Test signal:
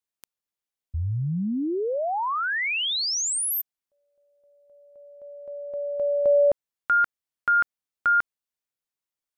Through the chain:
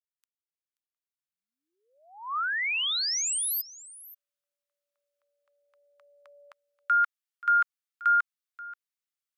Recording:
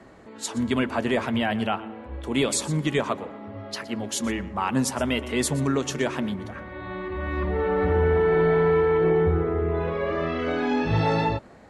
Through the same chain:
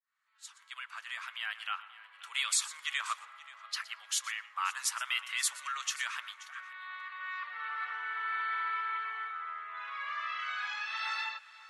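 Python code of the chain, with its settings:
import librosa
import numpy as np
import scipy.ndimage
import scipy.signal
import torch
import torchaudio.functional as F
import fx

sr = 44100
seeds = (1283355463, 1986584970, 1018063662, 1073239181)

y = fx.fade_in_head(x, sr, length_s=2.29)
y = scipy.signal.sosfilt(scipy.signal.cheby1(4, 1.0, 1200.0, 'highpass', fs=sr, output='sos'), y)
y = y + 10.0 ** (-18.5 / 20.0) * np.pad(y, (int(531 * sr / 1000.0), 0))[:len(y)]
y = y * 10.0 ** (-2.0 / 20.0)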